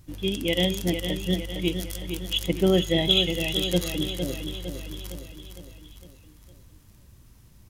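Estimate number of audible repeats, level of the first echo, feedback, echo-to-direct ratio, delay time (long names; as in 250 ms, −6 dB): 5, −7.5 dB, 53%, −6.0 dB, 458 ms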